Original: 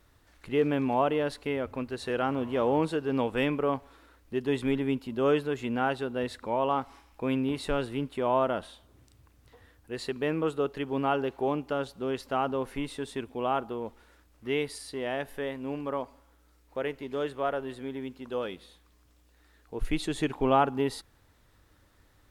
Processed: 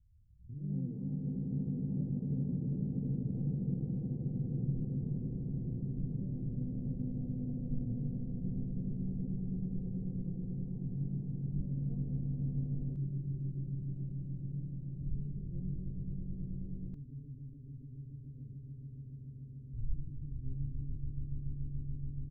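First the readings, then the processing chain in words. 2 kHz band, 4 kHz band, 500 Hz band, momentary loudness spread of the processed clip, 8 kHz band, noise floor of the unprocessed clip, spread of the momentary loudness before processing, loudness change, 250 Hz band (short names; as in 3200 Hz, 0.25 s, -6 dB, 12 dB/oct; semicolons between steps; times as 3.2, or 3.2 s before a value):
under -40 dB, under -40 dB, -26.0 dB, 12 LU, under -30 dB, -63 dBFS, 10 LU, -8.5 dB, -6.5 dB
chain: stepped spectrum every 0.1 s; inverse Chebyshev low-pass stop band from 780 Hz, stop band 80 dB; doubler 28 ms -4.5 dB; swelling echo 0.143 s, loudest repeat 8, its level -6 dB; echoes that change speed 0.213 s, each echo +5 st, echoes 2; gain +1 dB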